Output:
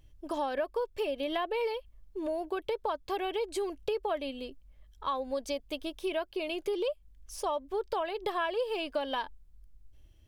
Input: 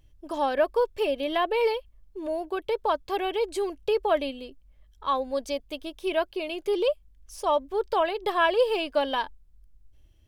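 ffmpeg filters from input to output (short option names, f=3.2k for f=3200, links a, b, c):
-af "acompressor=threshold=-30dB:ratio=4"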